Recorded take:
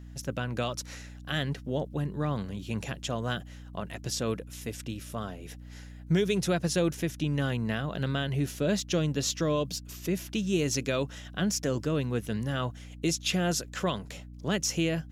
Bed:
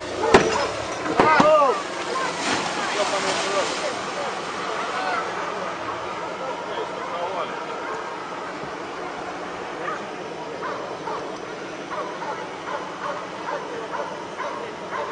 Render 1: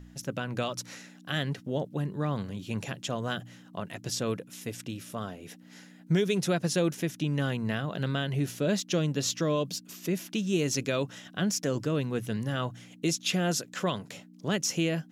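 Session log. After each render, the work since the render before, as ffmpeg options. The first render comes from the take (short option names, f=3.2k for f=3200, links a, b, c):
-af "bandreject=f=60:t=h:w=4,bandreject=f=120:t=h:w=4"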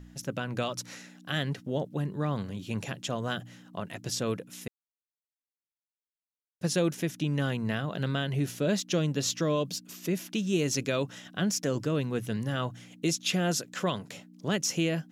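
-filter_complex "[0:a]asplit=3[a][b][c];[a]atrim=end=4.68,asetpts=PTS-STARTPTS,afade=t=out:st=4.676:d=0.004:c=hsin[d];[b]atrim=start=4.68:end=6.61,asetpts=PTS-STARTPTS,volume=0[e];[c]atrim=start=6.61,asetpts=PTS-STARTPTS,afade=t=in:d=0.004:c=hsin[f];[d][e][f]concat=n=3:v=0:a=1"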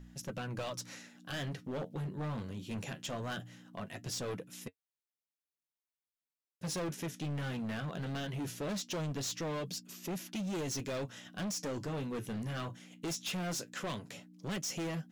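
-af "flanger=delay=5.2:depth=7.6:regen=-57:speed=0.2:shape=sinusoidal,volume=34.5dB,asoftclip=hard,volume=-34.5dB"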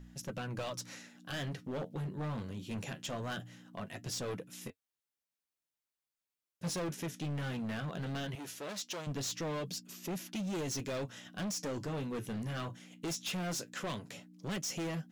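-filter_complex "[0:a]asettb=1/sr,asplit=3[a][b][c];[a]atrim=end=4.614[d];[b]atrim=start=4.61:end=6.7,asetpts=PTS-STARTPTS,afade=t=in:d=0.004:c=qsin,afade=t=out:st=2.086:d=0.004:c=qsin,asplit=2[e][f];[f]adelay=23,volume=-6dB[g];[e][g]amix=inputs=2:normalize=0,atrim=end_sample=92169[h];[c]atrim=start=6.696[i];[d][h]acrossfade=d=0.004:c1=hsin:c2=qsin[j];[j][i]acrossfade=d=0.004:c1=qsin:c2=hsin,asettb=1/sr,asplit=3[k][l][m];[k]atrim=end=8.354[n];[l]atrim=start=8.35:end=9.07,asetpts=PTS-STARTPTS,afade=t=in:d=0.004:c=qsin,afade=t=out:st=0.716:d=0.004:c=qsin,highpass=f=640:p=1[o];[m]atrim=start=9.066[p];[n][o]acrossfade=d=0.004:c1=hsin:c2=qsin[q];[q][p]acrossfade=d=0.004:c1=qsin:c2=hsin"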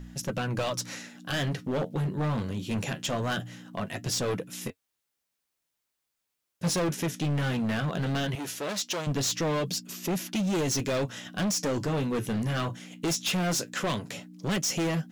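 -af "volume=9.5dB"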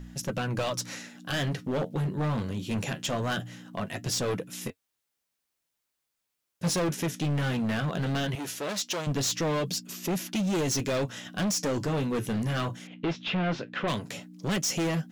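-filter_complex "[0:a]asettb=1/sr,asplit=3[a][b][c];[a]atrim=end=12.874[d];[b]atrim=start=12.87:end=13.88,asetpts=PTS-STARTPTS,afade=t=in:d=0.004:c=qsin,afade=t=out:st=1.006:d=0.004:c=qsin,lowpass=f=3.4k:w=0.5412,lowpass=f=3.4k:w=1.3066[e];[c]atrim=start=13.876[f];[d][e]acrossfade=d=0.004:c1=hsin:c2=qsin[g];[g][f]acrossfade=d=0.004:c1=qsin:c2=hsin"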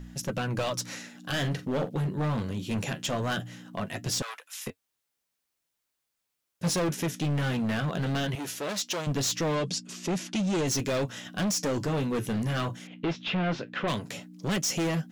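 -filter_complex "[0:a]asettb=1/sr,asplit=3[a][b][c];[a]atrim=end=1.194[d];[b]atrim=start=1.19:end=1.9,asetpts=PTS-STARTPTS,afade=t=in:d=0.004:c=qsin,afade=t=out:st=0.706:d=0.004:c=qsin,asplit=2[e][f];[f]adelay=43,volume=-12dB[g];[e][g]amix=inputs=2:normalize=0,atrim=end_sample=31311[h];[c]atrim=start=1.896[i];[d][h]acrossfade=d=0.004:c1=hsin:c2=qsin[j];[j][i]acrossfade=d=0.004:c1=qsin:c2=hsin,asettb=1/sr,asplit=3[k][l][m];[k]atrim=end=4.224[n];[l]atrim=start=4.22:end=4.67,asetpts=PTS-STARTPTS,afade=t=in:d=0.004:c=qsin,afade=t=out:st=0.446:d=0.004:c=qsin,highpass=f=910:w=0.5412,highpass=f=910:w=1.3066[o];[m]atrim=start=4.666[p];[n][o]acrossfade=d=0.004:c1=hsin:c2=qsin[q];[q][p]acrossfade=d=0.004:c1=qsin:c2=hsin,asettb=1/sr,asplit=3[r][s][t];[r]atrim=end=9.554[u];[s]atrim=start=9.55:end=10.67,asetpts=PTS-STARTPTS,afade=t=in:d=0.004:c=qsin,afade=t=out:st=1.116:d=0.004:c=qsin,lowpass=f=9k:w=0.5412,lowpass=f=9k:w=1.3066[v];[t]atrim=start=10.666[w];[u][v]acrossfade=d=0.004:c1=hsin:c2=qsin[x];[x][w]acrossfade=d=0.004:c1=qsin:c2=hsin"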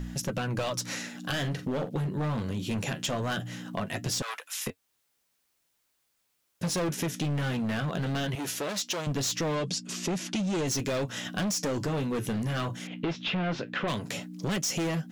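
-filter_complex "[0:a]asplit=2[a][b];[b]alimiter=level_in=8dB:limit=-24dB:level=0:latency=1:release=317,volume=-8dB,volume=2dB[c];[a][c]amix=inputs=2:normalize=0,acompressor=threshold=-28dB:ratio=6"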